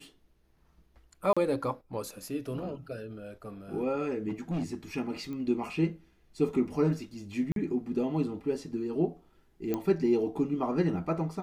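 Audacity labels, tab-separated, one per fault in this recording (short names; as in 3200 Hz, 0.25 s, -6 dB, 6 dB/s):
1.330000	1.370000	gap 36 ms
4.280000	4.750000	clipped -28 dBFS
5.330000	5.330000	pop -29 dBFS
7.520000	7.560000	gap 42 ms
9.740000	9.740000	pop -18 dBFS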